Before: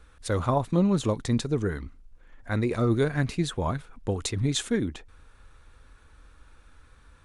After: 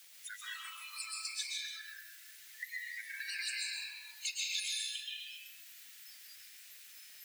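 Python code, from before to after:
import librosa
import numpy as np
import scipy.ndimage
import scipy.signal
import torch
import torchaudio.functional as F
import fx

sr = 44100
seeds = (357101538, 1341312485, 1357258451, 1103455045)

y = fx.spec_dropout(x, sr, seeds[0], share_pct=45)
y = np.clip(y, -10.0 ** (-25.5 / 20.0), 10.0 ** (-25.5 / 20.0))
y = fx.over_compress(y, sr, threshold_db=-33.0, ratio=-0.5)
y = 10.0 ** (-30.5 / 20.0) * np.tanh(y / 10.0 ** (-30.5 / 20.0))
y = fx.quant_dither(y, sr, seeds[1], bits=8, dither='triangular')
y = scipy.signal.sosfilt(scipy.signal.butter(6, 1800.0, 'highpass', fs=sr, output='sos'), y)
y = fx.rev_freeverb(y, sr, rt60_s=2.7, hf_ratio=0.65, predelay_ms=85, drr_db=-6.0)
y = fx.noise_reduce_blind(y, sr, reduce_db=19)
y = fx.dmg_crackle(y, sr, seeds[2], per_s=190.0, level_db=-64.0)
y = y + 10.0 ** (-8.0 / 20.0) * np.pad(y, (int(135 * sr / 1000.0), 0))[:len(y)]
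y = fx.band_squash(y, sr, depth_pct=40)
y = F.gain(torch.from_numpy(y), 1.0).numpy()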